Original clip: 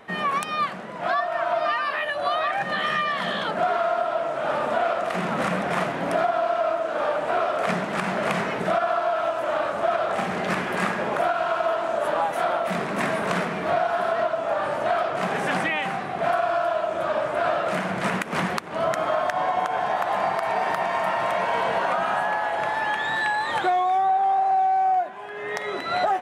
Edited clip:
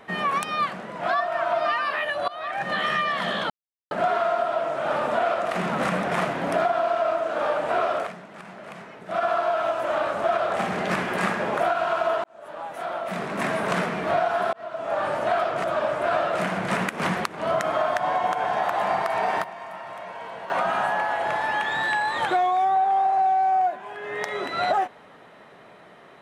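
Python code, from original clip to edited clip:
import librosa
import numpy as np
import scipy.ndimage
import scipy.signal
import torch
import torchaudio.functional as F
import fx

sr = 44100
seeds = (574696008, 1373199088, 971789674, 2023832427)

y = fx.edit(x, sr, fx.fade_in_from(start_s=2.28, length_s=0.43, floor_db=-19.5),
    fx.insert_silence(at_s=3.5, length_s=0.41),
    fx.fade_down_up(start_s=7.56, length_s=1.25, db=-16.0, fade_s=0.14),
    fx.fade_in_span(start_s=11.83, length_s=1.41),
    fx.fade_in_span(start_s=14.12, length_s=0.47),
    fx.cut(start_s=15.23, length_s=1.74),
    fx.fade_down_up(start_s=20.65, length_s=1.3, db=-13.0, fade_s=0.12, curve='log'), tone=tone)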